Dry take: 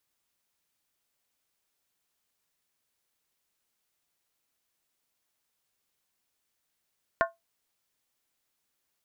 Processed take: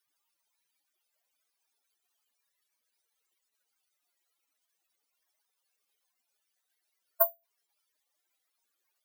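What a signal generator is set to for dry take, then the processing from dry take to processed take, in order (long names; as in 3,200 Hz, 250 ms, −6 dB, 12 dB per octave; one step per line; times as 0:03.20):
struck skin, lowest mode 671 Hz, modes 5, decay 0.18 s, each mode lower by 2 dB, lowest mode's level −19.5 dB
expanding power law on the bin magnitudes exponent 3.5
high-pass filter 410 Hz 12 dB per octave
bad sample-rate conversion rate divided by 3×, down filtered, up zero stuff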